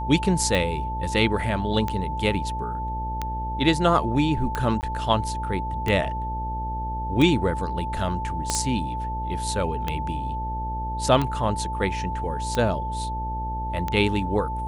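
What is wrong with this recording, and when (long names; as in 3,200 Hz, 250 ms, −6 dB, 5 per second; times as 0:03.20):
mains buzz 60 Hz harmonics 12 −31 dBFS
scratch tick 45 rpm −12 dBFS
whistle 880 Hz −29 dBFS
0:04.81–0:04.83: drop-out 19 ms
0:08.50: click −9 dBFS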